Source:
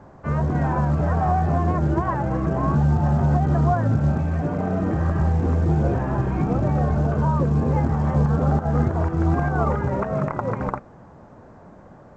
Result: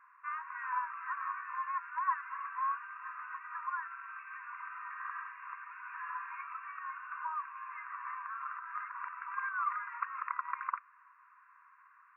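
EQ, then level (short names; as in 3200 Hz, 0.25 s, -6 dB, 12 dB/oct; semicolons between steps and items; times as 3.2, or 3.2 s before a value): brick-wall FIR band-pass 960–2800 Hz; -4.0 dB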